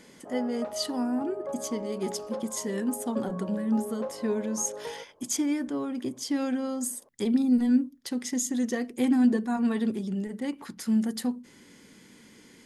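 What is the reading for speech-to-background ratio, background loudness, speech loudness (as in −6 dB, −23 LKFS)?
10.0 dB, −39.0 LKFS, −29.0 LKFS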